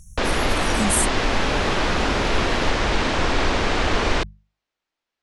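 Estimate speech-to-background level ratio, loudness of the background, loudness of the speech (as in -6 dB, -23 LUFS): -4.0 dB, -22.0 LUFS, -26.0 LUFS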